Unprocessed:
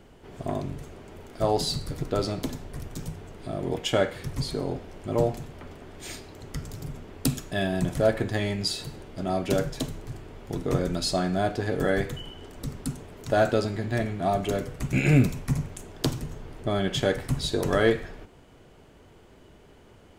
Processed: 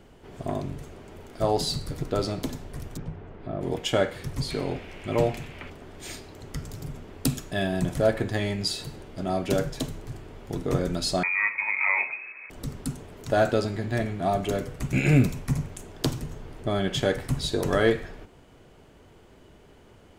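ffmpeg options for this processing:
-filter_complex "[0:a]asplit=3[a][b][c];[a]afade=t=out:st=2.96:d=0.02[d];[b]lowpass=2.1k,afade=t=in:st=2.96:d=0.02,afade=t=out:st=3.6:d=0.02[e];[c]afade=t=in:st=3.6:d=0.02[f];[d][e][f]amix=inputs=3:normalize=0,asettb=1/sr,asplit=3[g][h][i];[g]atrim=end=4.504[j];[h]atrim=start=4.5:end=5.7,asetpts=PTS-STARTPTS,afade=t=in:d=0.004:c=qsin,afade=t=out:st=1.196:d=0.004:c=qsin,equalizer=f=2.4k:w=1.3:g=13[k];[i]atrim=start=5.696[l];[j][k]acrossfade=d=0.004:c1=hsin:c2=qsin[m];[m][l]acrossfade=d=0.004:c1=qsin:c2=hsin,asettb=1/sr,asplit=3[n][o][p];[n]atrim=end=11.234[q];[o]atrim=start=11.23:end=12.5,asetpts=PTS-STARTPTS,afade=t=in:d=0.004:c=qsin,afade=t=out:st=1.266:d=0.004:c=qsin,lowpass=f=2.2k:t=q:w=0.5098,lowpass=f=2.2k:t=q:w=0.6013,lowpass=f=2.2k:t=q:w=0.9,lowpass=f=2.2k:t=q:w=2.563,afreqshift=-2600[r];[p]atrim=start=12.496[s];[q][r]acrossfade=d=0.004:c1=hsin:c2=qsin[t];[t][s]acrossfade=d=0.004:c1=qsin:c2=hsin"

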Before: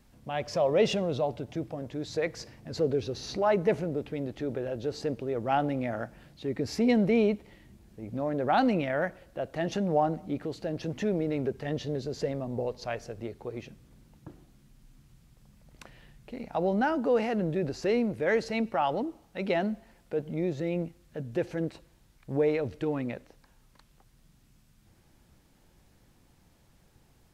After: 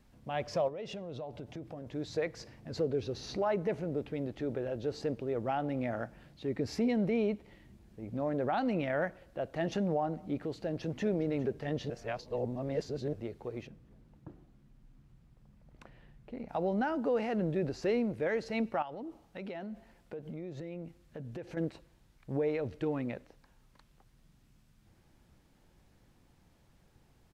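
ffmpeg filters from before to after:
-filter_complex "[0:a]asettb=1/sr,asplit=3[a][b][c];[a]atrim=end=0.684[d];[b]atrim=start=0.68:end=1.87,asetpts=PTS-STARTPTS,afade=t=in:d=0.004:c=qsin,afade=t=out:st=1.186:d=0.004:c=qsin,acompressor=threshold=-37dB:ratio=4:attack=3.2:release=140:knee=1:detection=peak[e];[c]atrim=start=1.866[f];[d][e]acrossfade=d=0.004:c1=hsin:c2=qsin[g];[g][f]acrossfade=d=0.004:c1=qsin:c2=hsin,asplit=2[h][i];[i]afade=t=in:st=10.56:d=0.01,afade=t=out:st=11.05:d=0.01,aecho=0:1:410|820|1230|1640|2050|2460|2870|3280:0.149624|0.104736|0.0733155|0.0513209|0.0359246|0.0251472|0.0176031|0.0123221[j];[h][j]amix=inputs=2:normalize=0,asettb=1/sr,asplit=3[k][l][m];[k]atrim=end=13.674[n];[l]atrim=start=13.67:end=16.49,asetpts=PTS-STARTPTS,afade=t=in:d=0.004:c=qsin,afade=t=out:st=2.816:d=0.004:c=qsin,highshelf=f=2.4k:g=-10[o];[m]atrim=start=16.486[p];[n][o]acrossfade=d=0.004:c1=hsin:c2=qsin[q];[q][p]acrossfade=d=0.004:c1=qsin:c2=hsin,asettb=1/sr,asplit=3[r][s][t];[r]atrim=end=18.824[u];[s]atrim=start=18.82:end=21.57,asetpts=PTS-STARTPTS,afade=t=in:d=0.004:c=qsin,afade=t=out:st=2.746:d=0.004:c=qsin,acompressor=threshold=-36dB:ratio=6:attack=3.2:release=140:knee=1:detection=peak[v];[t]atrim=start=21.566[w];[u][v]acrossfade=d=0.004:c1=hsin:c2=qsin[x];[x][w]acrossfade=d=0.004:c1=qsin:c2=hsin,asplit=3[y][z][aa];[y]atrim=end=11.902[ab];[z]atrim=start=11.898:end=13.132,asetpts=PTS-STARTPTS,areverse[ac];[aa]atrim=start=13.128[ad];[ab][ac]acrossfade=d=0.004:c1=hsin:c2=hsin[ae];[ae][ad]acrossfade=d=0.004:c1=hsin:c2=hsin,highshelf=f=5.4k:g=-6,alimiter=limit=-20dB:level=0:latency=1:release=273,volume=-2.5dB"

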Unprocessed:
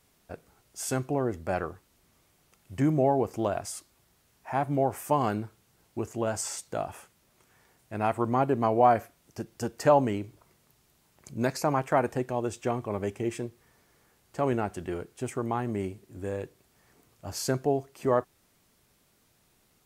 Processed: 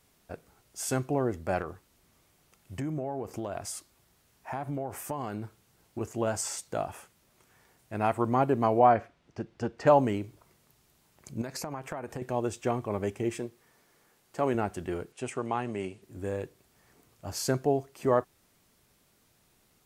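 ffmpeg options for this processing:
-filter_complex "[0:a]asettb=1/sr,asplit=3[a][b][c];[a]atrim=end=1.614[d];[b]atrim=start=1.61:end=6.01,asetpts=PTS-STARTPTS,afade=t=in:d=0.004:c=qsin,afade=t=out:st=4.396:d=0.004:c=qsin,acompressor=threshold=-30dB:ratio=6:attack=3.2:release=140:knee=1:detection=peak[e];[c]atrim=start=6.006[f];[d][e]acrossfade=d=0.004:c1=hsin:c2=qsin[g];[g][f]acrossfade=d=0.004:c1=qsin:c2=hsin,asettb=1/sr,asplit=3[h][i][j];[h]atrim=end=8.794[k];[i]atrim=start=8.79:end=9.87,asetpts=PTS-STARTPTS,afade=t=in:d=0.004:c=qsin,afade=t=out:st=1.076:d=0.004:c=qsin,lowpass=3.5k[l];[j]atrim=start=9.866[m];[k][l]acrossfade=d=0.004:c1=hsin:c2=qsin[n];[n][m]acrossfade=d=0.004:c1=qsin:c2=hsin,asettb=1/sr,asplit=3[o][p][q];[o]atrim=end=11.414[r];[p]atrim=start=11.41:end=12.22,asetpts=PTS-STARTPTS,afade=t=in:d=0.004:c=qsin,afade=t=out:st=0.806:d=0.004:c=qsin,acompressor=threshold=-32dB:ratio=12:attack=3.2:release=140:knee=1:detection=peak[s];[q]atrim=start=12.216[t];[r][s]acrossfade=d=0.004:c1=hsin:c2=qsin[u];[u][t]acrossfade=d=0.004:c1=qsin:c2=hsin,asettb=1/sr,asplit=3[v][w][x];[v]atrim=end=13.394[y];[w]atrim=start=13.39:end=14.55,asetpts=PTS-STARTPTS,afade=t=in:d=0.004:c=qsin,afade=t=out:st=1.156:d=0.004:c=qsin,equalizer=f=62:w=0.88:g=-14[z];[x]atrim=start=14.546[aa];[y][z]acrossfade=d=0.004:c1=hsin:c2=qsin[ab];[ab][aa]acrossfade=d=0.004:c1=qsin:c2=hsin,asettb=1/sr,asplit=3[ac][ad][ae];[ac]atrim=end=15.124[af];[ad]atrim=start=15.12:end=16.02,asetpts=PTS-STARTPTS,afade=t=in:d=0.004:c=qsin,afade=t=out:st=0.896:d=0.004:c=qsin,highpass=150,equalizer=f=210:t=q:w=4:g=-4,equalizer=f=320:t=q:w=4:g=-5,equalizer=f=2.7k:t=q:w=4:g=7,lowpass=f=9.9k:w=0.5412,lowpass=f=9.9k:w=1.3066[ag];[ae]atrim=start=16.016[ah];[af][ag]acrossfade=d=0.004:c1=hsin:c2=qsin[ai];[ai][ah]acrossfade=d=0.004:c1=qsin:c2=hsin"

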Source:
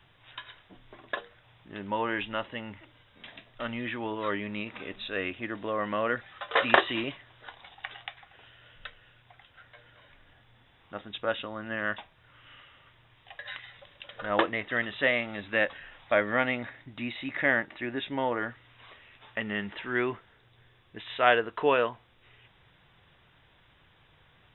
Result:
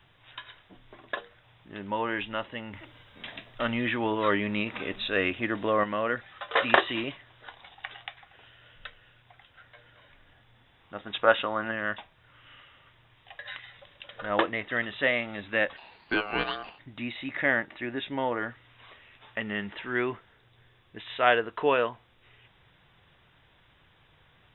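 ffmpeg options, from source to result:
-filter_complex "[0:a]asettb=1/sr,asplit=3[a][b][c];[a]atrim=end=2.734[d];[b]atrim=start=2.73:end=5.84,asetpts=PTS-STARTPTS,afade=t=in:d=0.004:c=qsin,afade=t=out:st=3.106:d=0.004:c=qsin,acontrast=47[e];[c]atrim=start=5.836[f];[d][e]acrossfade=d=0.004:c1=hsin:c2=qsin[g];[g][f]acrossfade=d=0.004:c1=qsin:c2=hsin,asplit=3[h][i][j];[h]afade=t=out:st=11.05:d=0.02[k];[i]equalizer=f=1.1k:t=o:w=3:g=11,afade=t=in:st=11.05:d=0.02,afade=t=out:st=11.7:d=0.02[l];[j]afade=t=in:st=11.7:d=0.02[m];[k][l][m]amix=inputs=3:normalize=0,asplit=3[n][o][p];[n]afade=t=out:st=15.76:d=0.02[q];[o]aeval=exprs='val(0)*sin(2*PI*940*n/s)':c=same,afade=t=in:st=15.76:d=0.02,afade=t=out:st=16.78:d=0.02[r];[p]afade=t=in:st=16.78:d=0.02[s];[q][r][s]amix=inputs=3:normalize=0"

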